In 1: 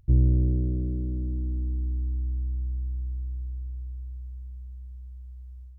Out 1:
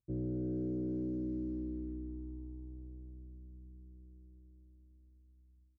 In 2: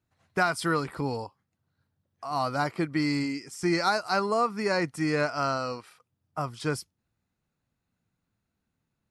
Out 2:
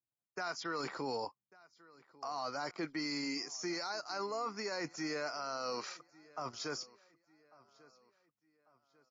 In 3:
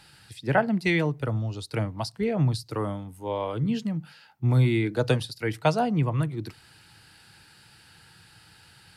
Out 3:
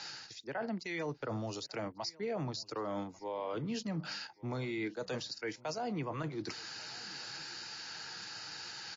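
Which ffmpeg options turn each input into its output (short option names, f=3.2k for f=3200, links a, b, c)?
-filter_complex "[0:a]acrossover=split=200[a][b];[b]aexciter=amount=6.6:drive=5.7:freq=4.7k[c];[a][c]amix=inputs=2:normalize=0,highpass=140,bass=f=250:g=-12,treble=f=4k:g=-9,areverse,acompressor=threshold=-42dB:ratio=6,areverse,alimiter=level_in=13.5dB:limit=-24dB:level=0:latency=1:release=18,volume=-13.5dB,anlmdn=0.000158,asplit=2[d][e];[e]adelay=1145,lowpass=f=4.4k:p=1,volume=-22.5dB,asplit=2[f][g];[g]adelay=1145,lowpass=f=4.4k:p=1,volume=0.43,asplit=2[h][i];[i]adelay=1145,lowpass=f=4.4k:p=1,volume=0.43[j];[d][f][h][j]amix=inputs=4:normalize=0,volume=8.5dB" -ar 16000 -c:a libmp3lame -b:a 32k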